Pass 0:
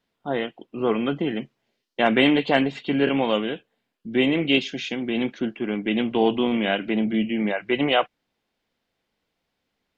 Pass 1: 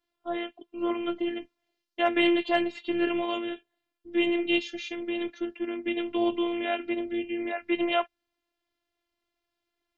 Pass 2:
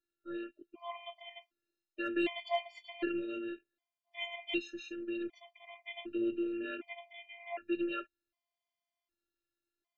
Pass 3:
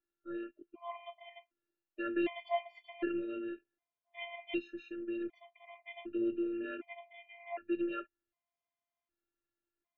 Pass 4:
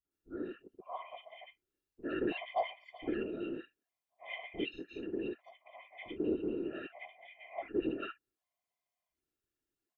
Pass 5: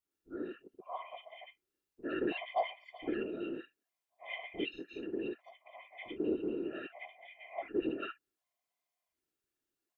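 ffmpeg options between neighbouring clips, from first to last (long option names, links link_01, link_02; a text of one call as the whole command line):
ffmpeg -i in.wav -af "afftfilt=real='hypot(re,im)*cos(PI*b)':imag='0':win_size=512:overlap=0.75,volume=-2.5dB" out.wav
ffmpeg -i in.wav -af "afftfilt=real='re*gt(sin(2*PI*0.66*pts/sr)*(1-2*mod(floor(b*sr/1024/610),2)),0)':imag='im*gt(sin(2*PI*0.66*pts/sr)*(1-2*mod(floor(b*sr/1024/610),2)),0)':win_size=1024:overlap=0.75,volume=-6.5dB" out.wav
ffmpeg -i in.wav -af "lowpass=2100" out.wav
ffmpeg -i in.wav -filter_complex "[0:a]acrossover=split=210|1400[link_01][link_02][link_03];[link_02]adelay=50[link_04];[link_03]adelay=110[link_05];[link_01][link_04][link_05]amix=inputs=3:normalize=0,afftfilt=real='hypot(re,im)*cos(2*PI*random(0))':imag='hypot(re,im)*sin(2*PI*random(1))':win_size=512:overlap=0.75,volume=7dB" out.wav
ffmpeg -i in.wav -af "lowshelf=frequency=130:gain=-8.5,volume=1dB" out.wav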